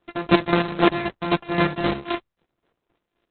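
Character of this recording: a buzz of ramps at a fixed pitch in blocks of 128 samples; chopped level 3.8 Hz, depth 65%, duty 35%; Opus

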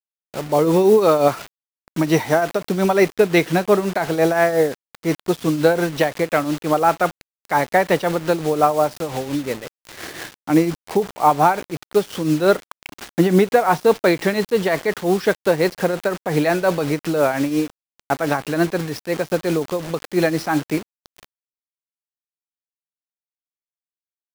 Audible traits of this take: a quantiser's noise floor 6-bit, dither none; tremolo triangle 5.7 Hz, depth 65%

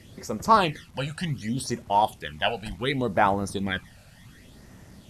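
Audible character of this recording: phasing stages 12, 0.68 Hz, lowest notch 330–3900 Hz; a quantiser's noise floor 10-bit, dither none; MP2

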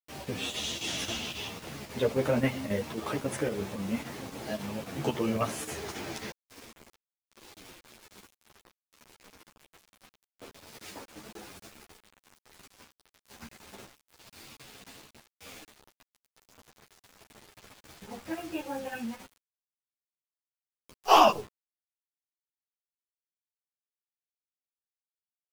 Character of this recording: chopped level 3.7 Hz, depth 60%, duty 85%; a quantiser's noise floor 8-bit, dither none; a shimmering, thickened sound

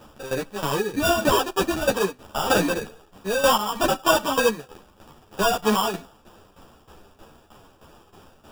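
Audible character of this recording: tremolo saw down 3.2 Hz, depth 80%; aliases and images of a low sample rate 2.1 kHz, jitter 0%; a shimmering, thickened sound

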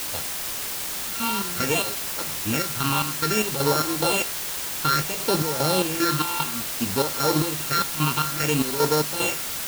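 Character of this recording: a buzz of ramps at a fixed pitch in blocks of 32 samples; phasing stages 6, 0.59 Hz, lowest notch 490–2700 Hz; chopped level 2.5 Hz, depth 65%, duty 55%; a quantiser's noise floor 6-bit, dither triangular

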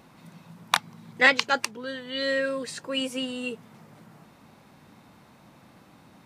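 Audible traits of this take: noise floor -55 dBFS; spectral tilt -2.0 dB/octave

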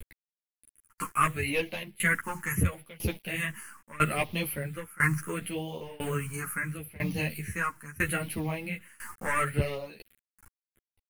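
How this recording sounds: a quantiser's noise floor 8-bit, dither none; phasing stages 4, 0.74 Hz, lowest notch 600–1400 Hz; tremolo saw down 1 Hz, depth 95%; a shimmering, thickened sound

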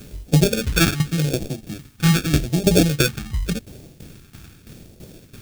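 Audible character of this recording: aliases and images of a low sample rate 1 kHz, jitter 0%; phasing stages 2, 0.85 Hz, lowest notch 540–1300 Hz; a quantiser's noise floor 10-bit, dither triangular; tremolo saw down 3 Hz, depth 80%

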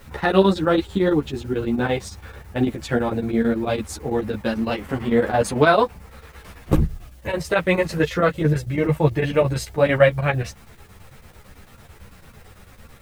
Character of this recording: a quantiser's noise floor 10-bit, dither triangular; chopped level 9 Hz, depth 60%, duty 75%; a shimmering, thickened sound

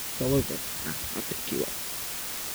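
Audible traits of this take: phasing stages 4, 0.8 Hz, lowest notch 640–1300 Hz; a quantiser's noise floor 6-bit, dither triangular

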